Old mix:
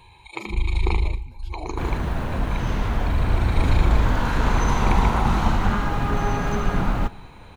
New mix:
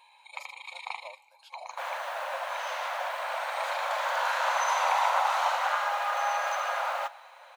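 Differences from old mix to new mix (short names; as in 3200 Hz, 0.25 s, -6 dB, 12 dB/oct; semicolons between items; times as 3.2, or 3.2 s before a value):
first sound -6.0 dB; master: add brick-wall FIR high-pass 510 Hz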